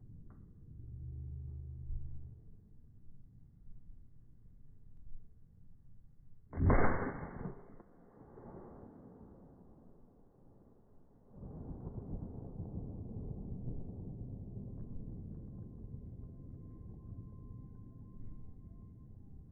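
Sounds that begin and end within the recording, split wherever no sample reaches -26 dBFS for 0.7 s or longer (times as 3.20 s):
6.62–6.95 s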